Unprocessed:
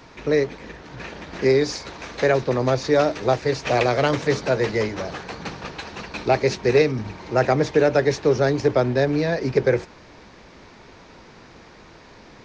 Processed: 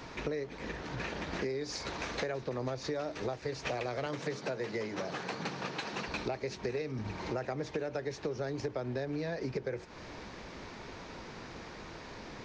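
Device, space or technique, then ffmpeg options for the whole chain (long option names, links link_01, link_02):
serial compression, leveller first: -filter_complex "[0:a]acompressor=threshold=-23dB:ratio=2,acompressor=threshold=-34dB:ratio=5,asettb=1/sr,asplit=3[link_01][link_02][link_03];[link_01]atrim=end=4.064[link_04];[link_02]atrim=start=4.06:end=6.08,asetpts=PTS-STARTPTS,afade=type=in:duration=0.004:curve=qsin,afade=type=out:start_time=2.016:duration=0.004:curve=qsin,highpass=frequency=120:width=0.5412,highpass=frequency=120:width=1.3066[link_05];[link_03]atrim=start=6.076[link_06];[link_04][link_05]acrossfade=duration=0.004:curve1=hsin:curve2=qsin[link_07];[link_07][link_06]acrossfade=duration=0.004:curve1=qsin:curve2=hsin"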